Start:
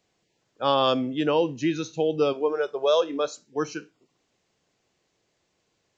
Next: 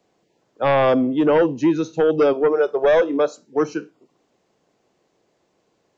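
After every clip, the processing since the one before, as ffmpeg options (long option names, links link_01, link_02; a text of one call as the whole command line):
ffmpeg -i in.wav -filter_complex "[0:a]acrossover=split=170|1200[link_01][link_02][link_03];[link_02]aeval=exprs='0.266*sin(PI/2*2*val(0)/0.266)':channel_layout=same[link_04];[link_03]alimiter=level_in=3.5dB:limit=-24dB:level=0:latency=1:release=338,volume=-3.5dB[link_05];[link_01][link_04][link_05]amix=inputs=3:normalize=0" out.wav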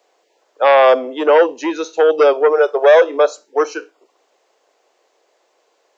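ffmpeg -i in.wav -af "highpass=frequency=450:width=0.5412,highpass=frequency=450:width=1.3066,volume=7.5dB" out.wav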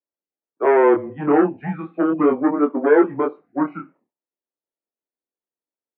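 ffmpeg -i in.wav -af "flanger=delay=20:depth=7.2:speed=0.35,agate=range=-33dB:threshold=-43dB:ratio=3:detection=peak,highpass=frequency=300:width_type=q:width=0.5412,highpass=frequency=300:width_type=q:width=1.307,lowpass=frequency=2200:width_type=q:width=0.5176,lowpass=frequency=2200:width_type=q:width=0.7071,lowpass=frequency=2200:width_type=q:width=1.932,afreqshift=-150,volume=-2dB" out.wav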